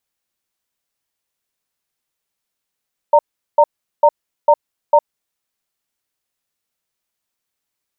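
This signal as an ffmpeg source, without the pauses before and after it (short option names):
-f lavfi -i "aevalsrc='0.355*(sin(2*PI*590*t)+sin(2*PI*921*t))*clip(min(mod(t,0.45),0.06-mod(t,0.45))/0.005,0,1)':d=2.05:s=44100"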